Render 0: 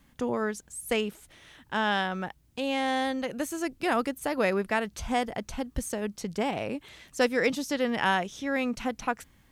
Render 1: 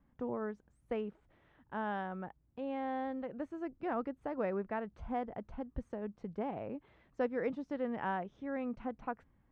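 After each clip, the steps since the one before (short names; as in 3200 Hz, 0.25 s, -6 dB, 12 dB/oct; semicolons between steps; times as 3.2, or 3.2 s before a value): LPF 1200 Hz 12 dB/oct; gain -8.5 dB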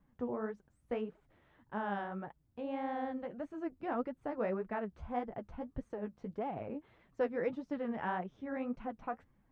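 flange 1.7 Hz, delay 4.4 ms, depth 9.9 ms, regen +26%; gain +3.5 dB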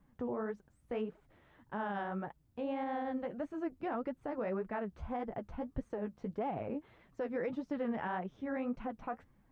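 limiter -31 dBFS, peak gain reduction 9.5 dB; gain +3 dB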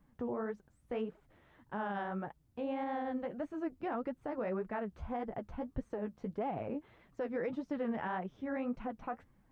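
wow and flutter 24 cents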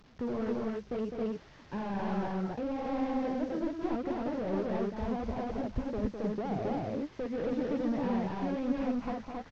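delta modulation 32 kbps, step -58 dBFS; loudspeakers at several distances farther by 71 m -6 dB, 93 m -1 dB; gain +4.5 dB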